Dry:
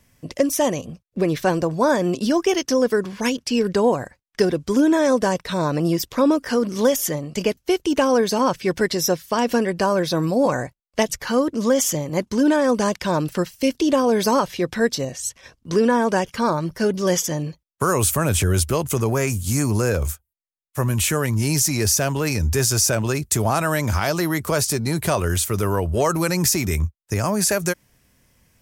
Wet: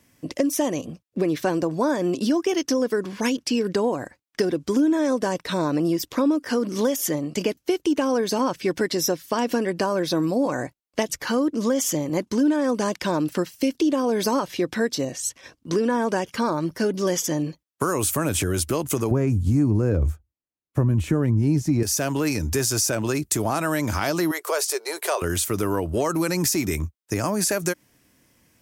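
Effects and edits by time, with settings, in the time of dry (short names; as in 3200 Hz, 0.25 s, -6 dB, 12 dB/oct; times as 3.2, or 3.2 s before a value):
19.11–21.83 tilt -4.5 dB/oct
24.31–25.22 elliptic high-pass 400 Hz
whole clip: HPF 140 Hz 6 dB/oct; bell 300 Hz +8 dB 0.43 oct; compressor 3:1, threshold -20 dBFS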